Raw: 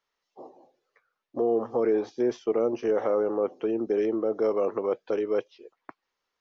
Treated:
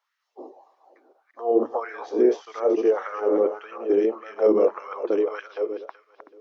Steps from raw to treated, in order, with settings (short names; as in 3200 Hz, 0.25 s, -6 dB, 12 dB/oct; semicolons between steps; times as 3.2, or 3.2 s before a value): regenerating reverse delay 0.189 s, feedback 48%, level -5.5 dB; 4.04–4.76 tone controls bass +10 dB, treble -1 dB; LFO high-pass sine 1.7 Hz 290–1600 Hz